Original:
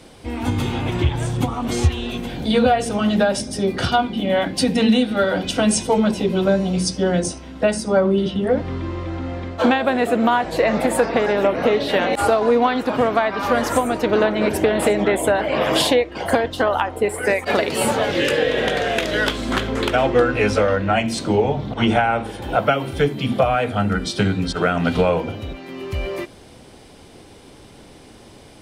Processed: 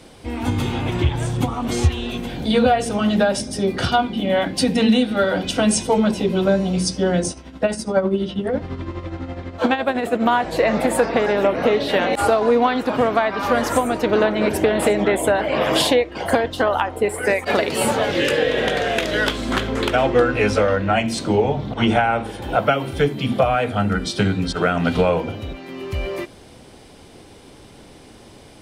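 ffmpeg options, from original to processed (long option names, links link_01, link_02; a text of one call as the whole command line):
ffmpeg -i in.wav -filter_complex "[0:a]asettb=1/sr,asplit=3[link_01][link_02][link_03];[link_01]atrim=end=7.314[link_04];[link_02]atrim=start=7.31:end=10.26,asetpts=PTS-STARTPTS,afade=type=in:duration=0.004:curve=qsin,afade=type=out:start_time=2.946:duration=0.004:curve=qsin,tremolo=f=12:d=0.61[link_05];[link_03]atrim=start=10.256[link_06];[link_04][link_05]acrossfade=duration=0.004:curve1=hsin:curve2=qsin[link_07];[link_07][link_06]acrossfade=duration=0.004:curve1=qsin:curve2=hsin" out.wav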